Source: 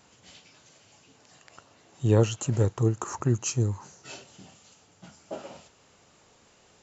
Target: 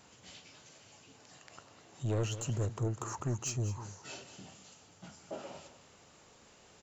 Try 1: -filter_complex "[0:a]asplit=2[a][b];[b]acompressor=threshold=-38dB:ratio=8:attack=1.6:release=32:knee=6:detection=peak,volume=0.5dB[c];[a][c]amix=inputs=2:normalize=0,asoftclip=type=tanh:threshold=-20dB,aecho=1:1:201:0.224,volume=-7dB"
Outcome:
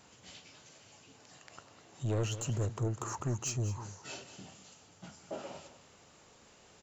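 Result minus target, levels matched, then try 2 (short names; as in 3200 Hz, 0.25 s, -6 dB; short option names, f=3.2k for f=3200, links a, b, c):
compressor: peak gain reduction -5.5 dB
-filter_complex "[0:a]asplit=2[a][b];[b]acompressor=threshold=-44.5dB:ratio=8:attack=1.6:release=32:knee=6:detection=peak,volume=0.5dB[c];[a][c]amix=inputs=2:normalize=0,asoftclip=type=tanh:threshold=-20dB,aecho=1:1:201:0.224,volume=-7dB"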